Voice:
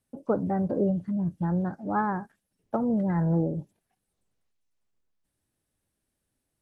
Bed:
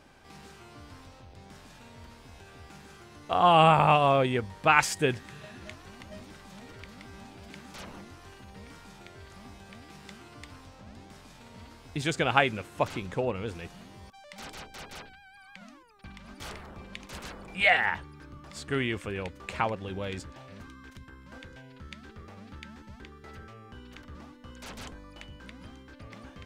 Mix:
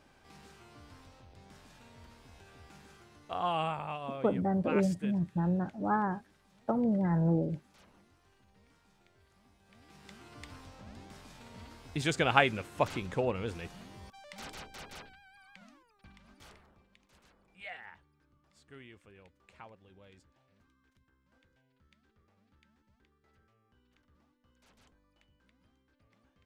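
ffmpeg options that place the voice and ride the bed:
-filter_complex "[0:a]adelay=3950,volume=-3dB[a];[1:a]volume=10.5dB,afade=t=out:st=2.85:d=0.97:silence=0.251189,afade=t=in:st=9.62:d=0.89:silence=0.149624,afade=t=out:st=14.2:d=2.69:silence=0.0841395[b];[a][b]amix=inputs=2:normalize=0"

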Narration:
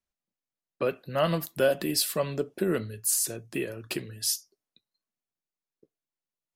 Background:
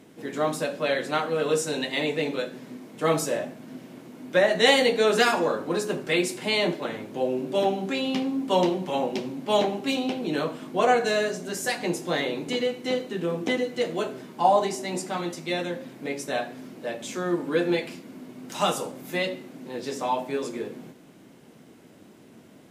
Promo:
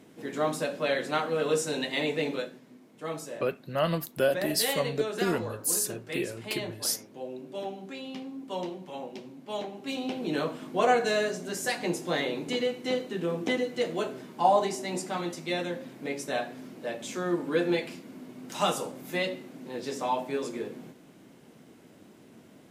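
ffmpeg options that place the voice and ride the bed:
-filter_complex "[0:a]adelay=2600,volume=-1.5dB[a];[1:a]volume=7.5dB,afade=t=out:st=2.34:d=0.27:silence=0.316228,afade=t=in:st=9.73:d=0.56:silence=0.316228[b];[a][b]amix=inputs=2:normalize=0"

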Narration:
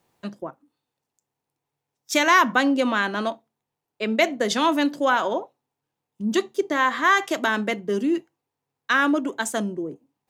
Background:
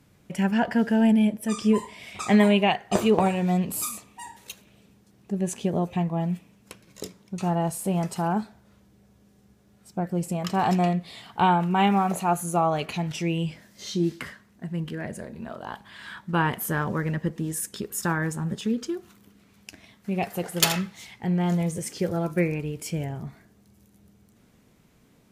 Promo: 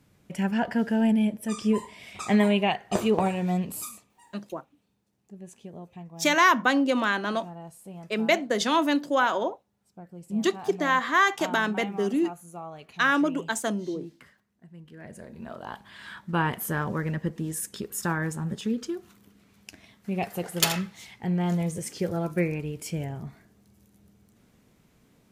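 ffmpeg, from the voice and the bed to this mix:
-filter_complex "[0:a]adelay=4100,volume=-2.5dB[a];[1:a]volume=12dB,afade=t=out:st=3.57:d=0.59:silence=0.199526,afade=t=in:st=14.88:d=0.66:silence=0.177828[b];[a][b]amix=inputs=2:normalize=0"

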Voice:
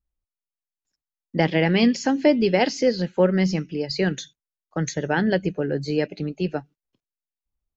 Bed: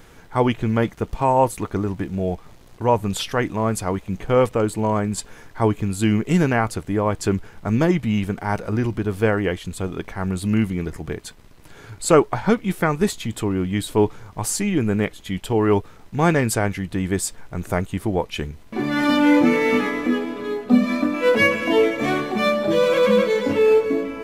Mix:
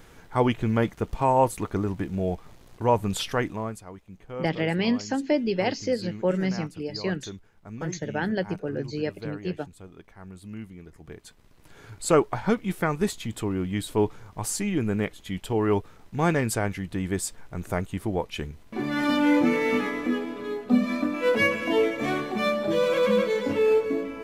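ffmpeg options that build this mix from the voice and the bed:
-filter_complex "[0:a]adelay=3050,volume=-6dB[a];[1:a]volume=10dB,afade=t=out:st=3.34:d=0.47:silence=0.16788,afade=t=in:st=10.91:d=0.97:silence=0.211349[b];[a][b]amix=inputs=2:normalize=0"

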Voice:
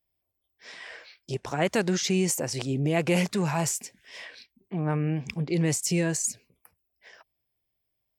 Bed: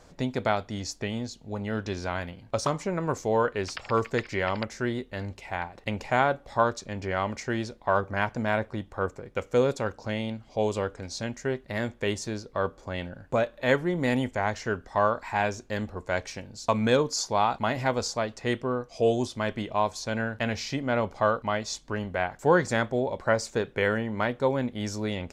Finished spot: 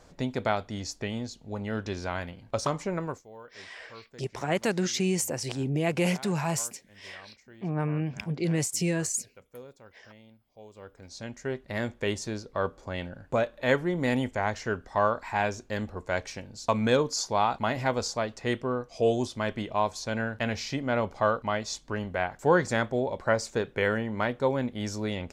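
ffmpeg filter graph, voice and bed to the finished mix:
-filter_complex "[0:a]adelay=2900,volume=-2dB[a];[1:a]volume=20.5dB,afade=t=out:st=2.98:d=0.25:silence=0.0841395,afade=t=in:st=10.74:d=1.03:silence=0.0794328[b];[a][b]amix=inputs=2:normalize=0"

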